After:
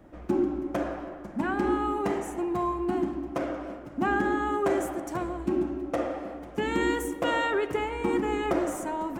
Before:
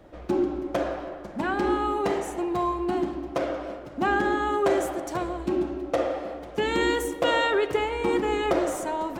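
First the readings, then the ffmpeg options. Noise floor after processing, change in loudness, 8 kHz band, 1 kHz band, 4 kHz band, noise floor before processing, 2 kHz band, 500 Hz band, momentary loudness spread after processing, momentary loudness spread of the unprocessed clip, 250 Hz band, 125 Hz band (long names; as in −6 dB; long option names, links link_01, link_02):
−43 dBFS, −2.5 dB, −3.0 dB, −3.0 dB, −7.0 dB, −41 dBFS, −3.0 dB, −3.5 dB, 7 LU, 7 LU, 0.0 dB, −0.5 dB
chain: -af "equalizer=frequency=250:width_type=o:width=1:gain=5,equalizer=frequency=500:width_type=o:width=1:gain=-5,equalizer=frequency=4000:width_type=o:width=1:gain=-8,volume=-1.5dB"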